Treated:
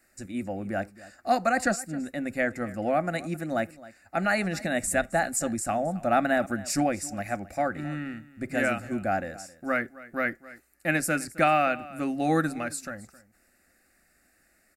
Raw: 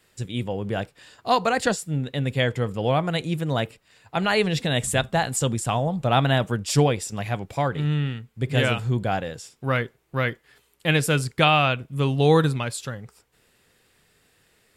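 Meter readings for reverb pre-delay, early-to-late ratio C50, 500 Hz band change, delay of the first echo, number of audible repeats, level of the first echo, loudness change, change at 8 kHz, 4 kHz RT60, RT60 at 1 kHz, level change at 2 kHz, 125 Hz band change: no reverb, no reverb, -4.0 dB, 266 ms, 1, -19.0 dB, -4.5 dB, -1.5 dB, no reverb, no reverb, -2.0 dB, -14.0 dB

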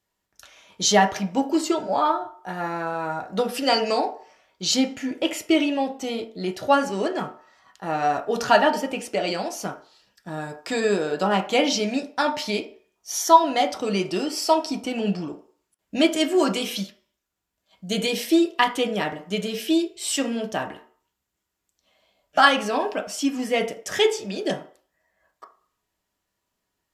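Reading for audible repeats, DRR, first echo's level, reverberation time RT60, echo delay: no echo, 3.0 dB, no echo, 0.50 s, no echo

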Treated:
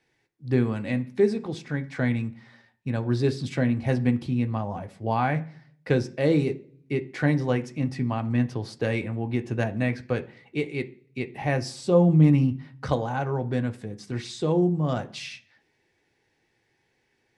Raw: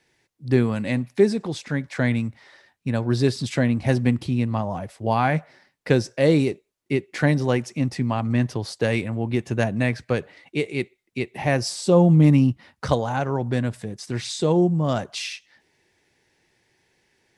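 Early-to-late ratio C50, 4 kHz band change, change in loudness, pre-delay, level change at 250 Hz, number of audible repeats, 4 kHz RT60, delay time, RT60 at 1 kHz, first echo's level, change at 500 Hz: 18.5 dB, -7.0 dB, -3.5 dB, 3 ms, -3.0 dB, no echo, 0.55 s, no echo, 0.40 s, no echo, -3.5 dB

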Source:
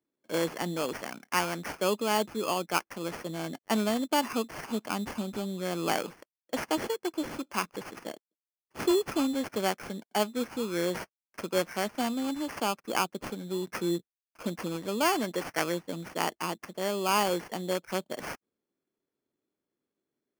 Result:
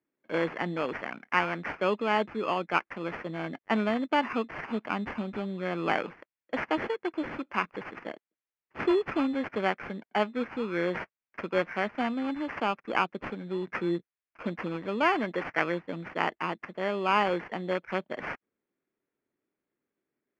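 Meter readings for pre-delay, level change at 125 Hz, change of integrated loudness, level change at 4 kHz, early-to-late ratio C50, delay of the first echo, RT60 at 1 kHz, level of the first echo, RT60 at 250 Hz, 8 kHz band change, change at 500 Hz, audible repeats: no reverb, 0.0 dB, +0.5 dB, -5.0 dB, no reverb, no echo, no reverb, no echo, no reverb, under -20 dB, +0.5 dB, no echo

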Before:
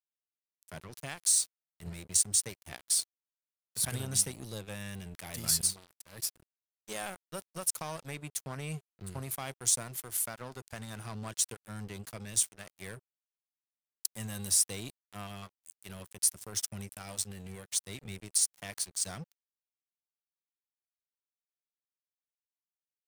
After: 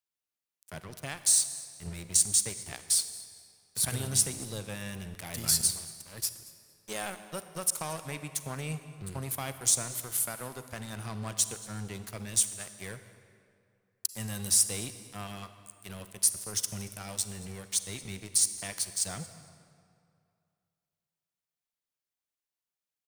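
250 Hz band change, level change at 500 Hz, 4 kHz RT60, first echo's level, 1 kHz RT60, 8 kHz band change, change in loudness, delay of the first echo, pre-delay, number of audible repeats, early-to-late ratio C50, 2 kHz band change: +3.0 dB, +3.0 dB, 1.6 s, -21.0 dB, 2.4 s, +3.0 dB, +2.5 dB, 228 ms, 37 ms, 1, 11.0 dB, +3.0 dB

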